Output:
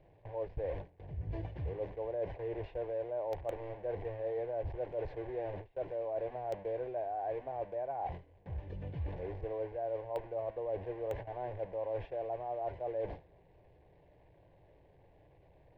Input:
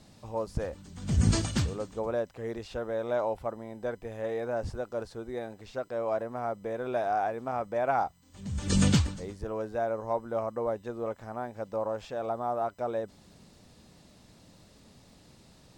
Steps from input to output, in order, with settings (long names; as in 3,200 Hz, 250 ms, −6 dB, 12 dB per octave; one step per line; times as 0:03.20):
linear delta modulator 64 kbit/s, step −33.5 dBFS
low-pass filter 1,900 Hz 24 dB per octave
noise gate with hold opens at −33 dBFS
reversed playback
downward compressor 20 to 1, threshold −36 dBFS, peak gain reduction 19 dB
reversed playback
phaser with its sweep stopped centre 540 Hz, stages 4
in parallel at −11 dB: bit reduction 5 bits
on the sum: level +3.5 dB